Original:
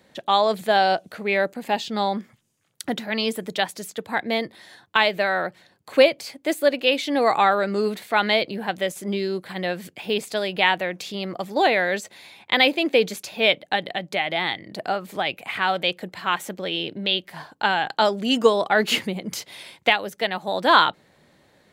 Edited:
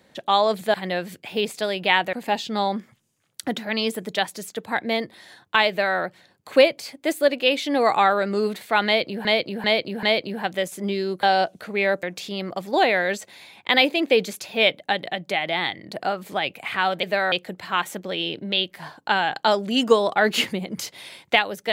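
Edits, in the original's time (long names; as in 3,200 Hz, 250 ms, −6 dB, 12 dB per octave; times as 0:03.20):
0:00.74–0:01.54: swap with 0:09.47–0:10.86
0:05.10–0:05.39: duplicate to 0:15.86
0:08.27–0:08.66: repeat, 4 plays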